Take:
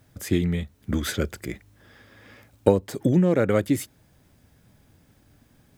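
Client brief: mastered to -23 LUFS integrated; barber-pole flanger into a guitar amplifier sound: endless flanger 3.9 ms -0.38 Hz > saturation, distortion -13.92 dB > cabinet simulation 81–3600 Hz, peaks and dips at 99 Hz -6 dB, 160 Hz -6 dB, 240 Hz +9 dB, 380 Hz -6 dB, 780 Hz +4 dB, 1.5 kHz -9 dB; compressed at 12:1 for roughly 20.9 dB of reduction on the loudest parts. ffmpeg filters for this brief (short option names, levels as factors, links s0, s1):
-filter_complex "[0:a]acompressor=threshold=0.0224:ratio=12,asplit=2[s0][s1];[s1]adelay=3.9,afreqshift=-0.38[s2];[s0][s2]amix=inputs=2:normalize=1,asoftclip=threshold=0.02,highpass=81,equalizer=f=99:t=q:w=4:g=-6,equalizer=f=160:t=q:w=4:g=-6,equalizer=f=240:t=q:w=4:g=9,equalizer=f=380:t=q:w=4:g=-6,equalizer=f=780:t=q:w=4:g=4,equalizer=f=1500:t=q:w=4:g=-9,lowpass=f=3600:w=0.5412,lowpass=f=3600:w=1.3066,volume=12.6"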